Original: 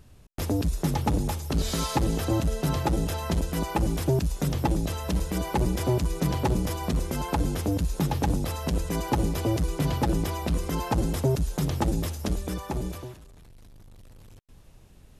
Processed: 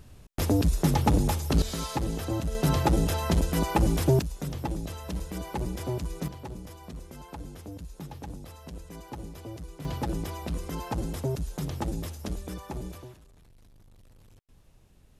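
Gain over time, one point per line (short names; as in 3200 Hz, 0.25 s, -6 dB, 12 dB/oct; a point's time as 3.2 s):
+2.5 dB
from 1.62 s -5 dB
from 2.55 s +2 dB
from 4.22 s -7 dB
from 6.28 s -15 dB
from 9.85 s -6 dB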